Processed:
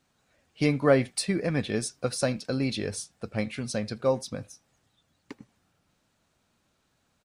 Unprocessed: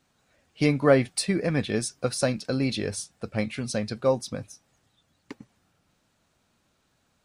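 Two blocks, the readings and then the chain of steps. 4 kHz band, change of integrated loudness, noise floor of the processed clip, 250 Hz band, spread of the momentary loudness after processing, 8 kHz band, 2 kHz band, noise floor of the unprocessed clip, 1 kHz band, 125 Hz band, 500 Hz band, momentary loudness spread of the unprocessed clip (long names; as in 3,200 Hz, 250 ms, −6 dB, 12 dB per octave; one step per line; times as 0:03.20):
−2.0 dB, −2.0 dB, −73 dBFS, −2.0 dB, 12 LU, −2.0 dB, −2.0 dB, −71 dBFS, −2.0 dB, −2.0 dB, −2.0 dB, 12 LU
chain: far-end echo of a speakerphone 80 ms, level −23 dB
level −2 dB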